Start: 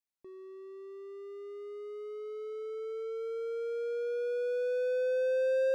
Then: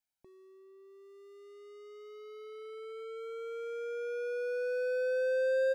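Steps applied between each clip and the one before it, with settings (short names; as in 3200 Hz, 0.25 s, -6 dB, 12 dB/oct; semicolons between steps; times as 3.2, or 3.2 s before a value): comb 1.3 ms, depth 68%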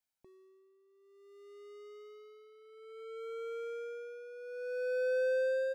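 tremolo 0.58 Hz, depth 76%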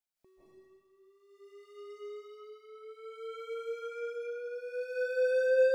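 reverb RT60 1.3 s, pre-delay 0.12 s, DRR -9 dB; gain -4.5 dB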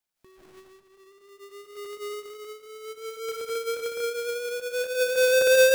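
half-waves squared off; gain +4.5 dB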